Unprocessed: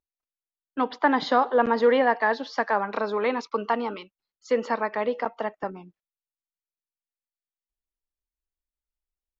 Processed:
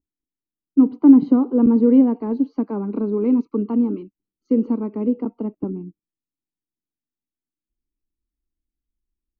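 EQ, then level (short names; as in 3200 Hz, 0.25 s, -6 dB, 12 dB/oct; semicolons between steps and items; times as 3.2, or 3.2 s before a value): running mean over 25 samples; resonant low shelf 440 Hz +13.5 dB, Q 3; -3.5 dB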